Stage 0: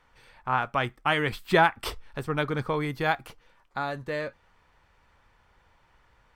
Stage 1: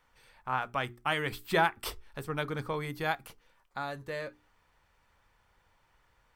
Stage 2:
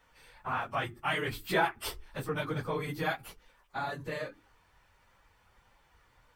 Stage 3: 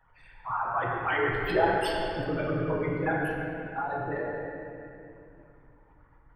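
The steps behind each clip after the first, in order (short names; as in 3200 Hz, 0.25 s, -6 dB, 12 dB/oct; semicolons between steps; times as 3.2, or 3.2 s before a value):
high shelf 7400 Hz +10.5 dB; notches 60/120/180/240/300/360/420 Hz; gain -6 dB
phase scrambler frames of 50 ms; in parallel at +2 dB: compressor, threshold -39 dBFS, peak gain reduction 17.5 dB; on the sum: gain -3.5 dB
formant sharpening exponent 3; wow and flutter 24 cents; reverb RT60 2.6 s, pre-delay 6 ms, DRR -4.5 dB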